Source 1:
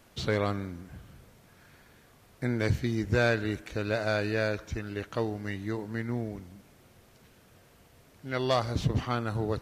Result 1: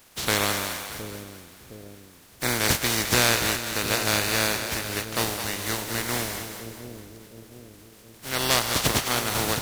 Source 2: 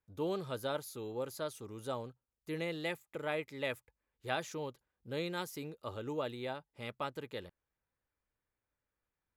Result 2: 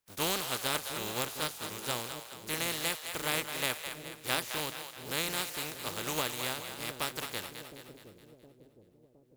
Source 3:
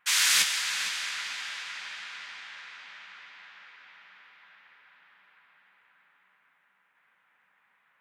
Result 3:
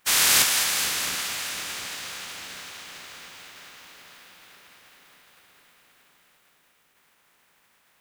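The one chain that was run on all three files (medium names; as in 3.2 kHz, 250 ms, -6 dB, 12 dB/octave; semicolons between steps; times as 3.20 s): spectral contrast reduction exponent 0.32; two-band feedback delay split 520 Hz, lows 714 ms, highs 211 ms, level -8 dB; trim +4 dB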